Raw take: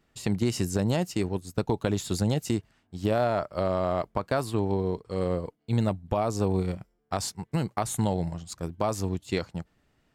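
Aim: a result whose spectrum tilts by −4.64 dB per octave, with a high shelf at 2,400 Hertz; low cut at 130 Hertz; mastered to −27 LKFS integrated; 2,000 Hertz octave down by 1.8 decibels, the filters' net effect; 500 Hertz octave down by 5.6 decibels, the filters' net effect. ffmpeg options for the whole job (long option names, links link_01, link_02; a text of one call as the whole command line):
ffmpeg -i in.wav -af "highpass=130,equalizer=frequency=500:width_type=o:gain=-7.5,equalizer=frequency=2000:width_type=o:gain=-4.5,highshelf=frequency=2400:gain=5,volume=4.5dB" out.wav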